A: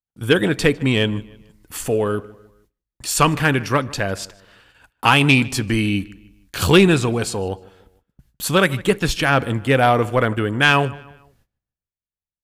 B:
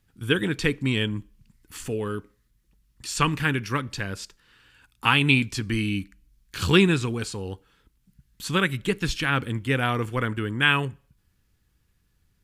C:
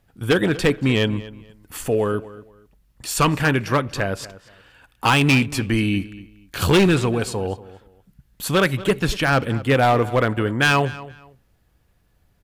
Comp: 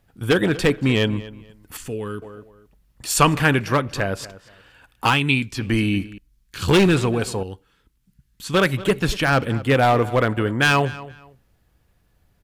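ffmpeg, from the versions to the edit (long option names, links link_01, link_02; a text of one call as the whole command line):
ffmpeg -i take0.wav -i take1.wav -i take2.wav -filter_complex "[1:a]asplit=4[link_01][link_02][link_03][link_04];[2:a]asplit=6[link_05][link_06][link_07][link_08][link_09][link_10];[link_05]atrim=end=1.772[link_11];[link_01]atrim=start=1.768:end=2.222[link_12];[link_06]atrim=start=2.218:end=3.102[link_13];[0:a]atrim=start=3.098:end=3.602[link_14];[link_07]atrim=start=3.598:end=5.22[link_15];[link_02]atrim=start=5.06:end=5.69[link_16];[link_08]atrim=start=5.53:end=6.182[link_17];[link_03]atrim=start=6.178:end=6.682[link_18];[link_09]atrim=start=6.678:end=7.432[link_19];[link_04]atrim=start=7.428:end=8.542[link_20];[link_10]atrim=start=8.538[link_21];[link_11][link_12]acrossfade=duration=0.004:curve1=hsin:curve2=hsin[link_22];[link_22][link_13]acrossfade=duration=0.004:curve1=hsin:curve2=hsin[link_23];[link_23][link_14]acrossfade=duration=0.004:curve1=hsin:curve2=hsin[link_24];[link_24][link_15]acrossfade=duration=0.004:curve1=hsin:curve2=hsin[link_25];[link_25][link_16]acrossfade=duration=0.16:curve1=tri:curve2=tri[link_26];[link_26][link_17]acrossfade=duration=0.16:curve1=tri:curve2=tri[link_27];[link_27][link_18]acrossfade=duration=0.004:curve1=hsin:curve2=hsin[link_28];[link_28][link_19]acrossfade=duration=0.004:curve1=hsin:curve2=hsin[link_29];[link_29][link_20]acrossfade=duration=0.004:curve1=hsin:curve2=hsin[link_30];[link_30][link_21]acrossfade=duration=0.004:curve1=hsin:curve2=hsin" out.wav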